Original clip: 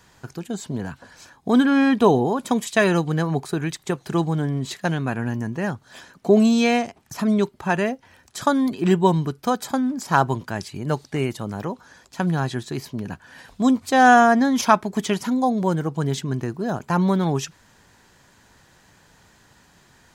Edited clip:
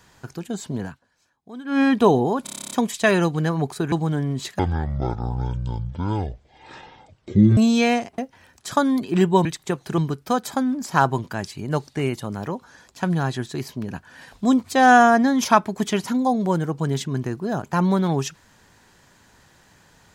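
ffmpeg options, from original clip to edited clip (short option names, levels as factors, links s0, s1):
-filter_complex "[0:a]asplit=18[s0][s1][s2][s3][s4][s5][s6][s7][s8][s9][s10][s11][s12][s13][s14][s15][s16][s17];[s0]atrim=end=1,asetpts=PTS-STARTPTS,afade=t=out:st=0.84:d=0.16:silence=0.0944061[s18];[s1]atrim=start=1:end=1.65,asetpts=PTS-STARTPTS,volume=0.0944[s19];[s2]atrim=start=1.65:end=2.472,asetpts=PTS-STARTPTS,afade=t=in:d=0.16:silence=0.0944061[s20];[s3]atrim=start=2.438:end=2.472[s21];[s4]atrim=start=2.438:end=2.472[s22];[s5]atrim=start=2.438:end=2.472[s23];[s6]atrim=start=2.438:end=2.472[s24];[s7]atrim=start=2.438:end=2.472[s25];[s8]atrim=start=2.438:end=2.472[s26];[s9]atrim=start=2.438:end=2.472[s27];[s10]atrim=start=2.438:end=2.472[s28];[s11]atrim=start=2.438:end=3.652[s29];[s12]atrim=start=4.178:end=4.854[s30];[s13]atrim=start=4.85:end=6.4,asetpts=PTS-STARTPTS,asetrate=22932,aresample=44100[s31];[s14]atrim=start=6.396:end=7.012[s32];[s15]atrim=start=7.878:end=9.152[s33];[s16]atrim=start=3.648:end=4.182[s34];[s17]atrim=start=9.148[s35];[s18][s19][s20]concat=n=3:v=0:a=1[s36];[s36][s21]acrossfade=d=0.004:c1=hsin:c2=hsin[s37];[s37][s22]acrossfade=d=0.004:c1=hsin:c2=hsin[s38];[s38][s23]acrossfade=d=0.004:c1=hsin:c2=hsin[s39];[s39][s24]acrossfade=d=0.004:c1=hsin:c2=hsin[s40];[s40][s25]acrossfade=d=0.004:c1=hsin:c2=hsin[s41];[s41][s26]acrossfade=d=0.004:c1=hsin:c2=hsin[s42];[s42][s27]acrossfade=d=0.004:c1=hsin:c2=hsin[s43];[s43][s28]acrossfade=d=0.004:c1=hsin:c2=hsin[s44];[s44][s29]acrossfade=d=0.004:c1=hsin:c2=hsin[s45];[s45][s30]acrossfade=d=0.004:c1=hsin:c2=hsin[s46];[s46][s31]acrossfade=d=0.004:c1=hsin:c2=hsin[s47];[s47][s32]acrossfade=d=0.004:c1=hsin:c2=hsin[s48];[s48][s33]acrossfade=d=0.004:c1=hsin:c2=hsin[s49];[s49][s34]acrossfade=d=0.004:c1=hsin:c2=hsin[s50];[s50][s35]acrossfade=d=0.004:c1=hsin:c2=hsin"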